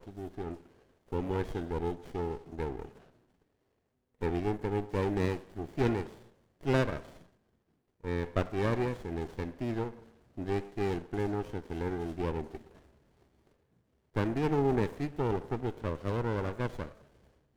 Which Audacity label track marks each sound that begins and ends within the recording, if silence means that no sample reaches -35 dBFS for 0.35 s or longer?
1.120000	2.850000	sound
4.220000	6.060000	sound
6.650000	6.980000	sound
8.050000	9.890000	sound
10.380000	12.560000	sound
14.160000	16.860000	sound